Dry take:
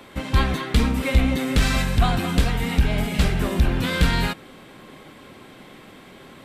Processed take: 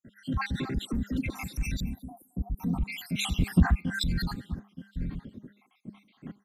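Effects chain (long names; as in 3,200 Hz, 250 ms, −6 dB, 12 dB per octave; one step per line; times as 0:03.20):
time-frequency cells dropped at random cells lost 76%
low shelf with overshoot 330 Hz +12.5 dB, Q 1.5
0:00.78–0:01.30: all-pass dispersion lows, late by 144 ms, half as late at 1,200 Hz
on a send: single-tap delay 919 ms −21.5 dB
on the sum: brickwall limiter −23.5 dBFS, peak gain reduction 29 dB
hum removal 203.4 Hz, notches 7
0:01.80–0:02.60: inverse Chebyshev band-stop filter 1,700–4,300 Hz, stop band 70 dB
far-end echo of a speakerphone 220 ms, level −15 dB
0:03.30–0:03.79: transient designer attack +8 dB, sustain +3 dB
multiband upward and downward expander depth 100%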